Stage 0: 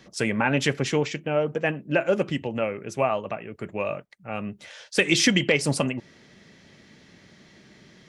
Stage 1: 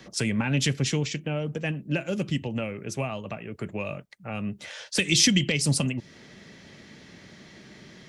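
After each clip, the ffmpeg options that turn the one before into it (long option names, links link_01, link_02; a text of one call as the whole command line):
ffmpeg -i in.wav -filter_complex "[0:a]acrossover=split=230|3000[link_01][link_02][link_03];[link_02]acompressor=threshold=-41dB:ratio=3[link_04];[link_01][link_04][link_03]amix=inputs=3:normalize=0,volume=4dB" out.wav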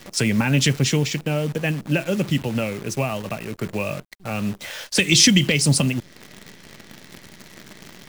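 ffmpeg -i in.wav -af "acontrast=33,acrusher=bits=7:dc=4:mix=0:aa=0.000001,volume=1dB" out.wav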